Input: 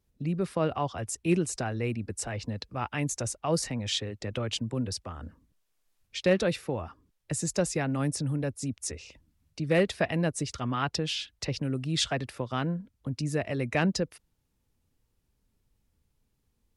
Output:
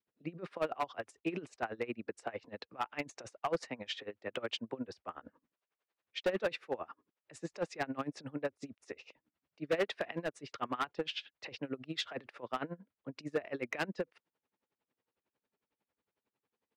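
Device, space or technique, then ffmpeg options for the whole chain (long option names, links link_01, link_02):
helicopter radio: -af "highpass=390,lowpass=2500,aeval=exprs='val(0)*pow(10,-22*(0.5-0.5*cos(2*PI*11*n/s))/20)':channel_layout=same,asoftclip=type=hard:threshold=-29dB,adynamicequalizer=threshold=0.00447:dfrequency=650:dqfactor=0.97:tfrequency=650:tqfactor=0.97:attack=5:release=100:ratio=0.375:range=2:mode=cutabove:tftype=bell,volume=3.5dB"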